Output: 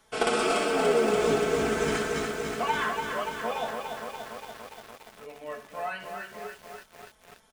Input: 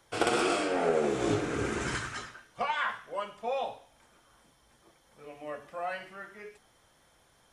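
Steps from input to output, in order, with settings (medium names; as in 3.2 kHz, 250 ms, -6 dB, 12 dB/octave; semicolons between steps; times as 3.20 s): comb 4.6 ms, depth 74%; bit-crushed delay 289 ms, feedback 80%, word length 8-bit, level -5 dB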